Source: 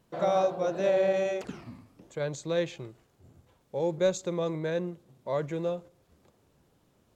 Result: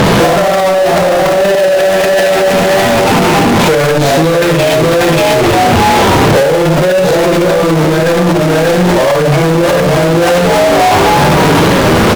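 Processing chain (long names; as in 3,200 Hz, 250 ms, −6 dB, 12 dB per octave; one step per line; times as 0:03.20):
high-frequency loss of the air 290 metres
on a send: echo with shifted repeats 171 ms, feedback 41%, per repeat +110 Hz, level −15 dB
on the sum: phase-vocoder stretch with locked phases 1.7×
low-shelf EQ 110 Hz −9.5 dB
single-tap delay 587 ms −7 dB
power curve on the samples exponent 0.5
four-comb reverb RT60 0.49 s, DRR −2 dB
in parallel at −11.5 dB: fuzz pedal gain 52 dB, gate −56 dBFS
on the sum: boost into a limiter +20.5 dB
level −3 dB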